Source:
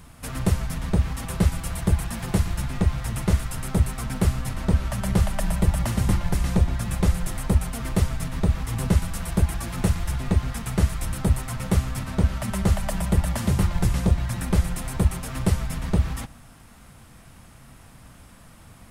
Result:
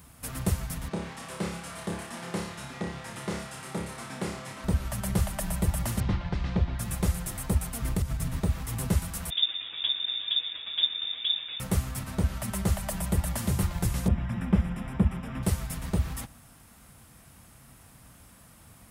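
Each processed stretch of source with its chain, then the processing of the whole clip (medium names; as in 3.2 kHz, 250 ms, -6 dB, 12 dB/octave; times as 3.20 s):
0.88–4.64 s: high-pass 240 Hz + distance through air 76 m + flutter echo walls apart 5 m, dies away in 0.48 s
6.00–6.79 s: CVSD coder 64 kbps + low-pass 4.3 kHz 24 dB/octave
7.82–8.37 s: bass shelf 180 Hz +9.5 dB + compression 10:1, threshold -16 dBFS
9.30–11.60 s: flange 1.2 Hz, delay 0.5 ms, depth 8.4 ms, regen -65% + frequency inversion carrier 3.6 kHz
14.08–15.43 s: Savitzky-Golay filter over 25 samples + peaking EQ 210 Hz +11 dB 0.49 oct
whole clip: high-pass 41 Hz; treble shelf 9.2 kHz +11.5 dB; trim -5.5 dB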